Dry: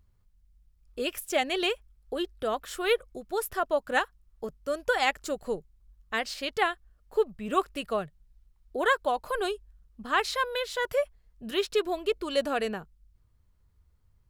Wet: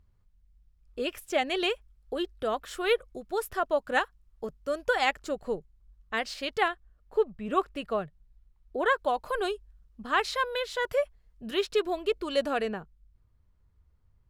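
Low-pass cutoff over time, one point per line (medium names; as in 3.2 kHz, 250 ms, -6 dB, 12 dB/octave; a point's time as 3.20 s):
low-pass 6 dB/octave
3.7 kHz
from 1.47 s 6.3 kHz
from 5.16 s 3.3 kHz
from 6.17 s 6.4 kHz
from 6.68 s 2.5 kHz
from 8.98 s 6.3 kHz
from 12.62 s 2.6 kHz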